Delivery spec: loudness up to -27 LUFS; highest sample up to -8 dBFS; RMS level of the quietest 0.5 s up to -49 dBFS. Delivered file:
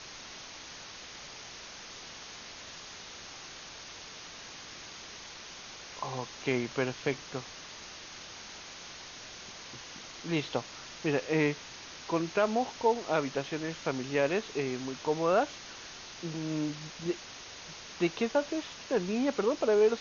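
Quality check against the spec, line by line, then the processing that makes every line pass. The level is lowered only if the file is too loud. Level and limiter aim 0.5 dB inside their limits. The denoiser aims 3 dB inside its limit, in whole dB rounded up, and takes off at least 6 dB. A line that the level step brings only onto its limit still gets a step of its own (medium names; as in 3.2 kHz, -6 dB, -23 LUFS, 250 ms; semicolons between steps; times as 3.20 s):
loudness -34.5 LUFS: pass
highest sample -14.0 dBFS: pass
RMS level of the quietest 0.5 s -47 dBFS: fail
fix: noise reduction 6 dB, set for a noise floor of -47 dBFS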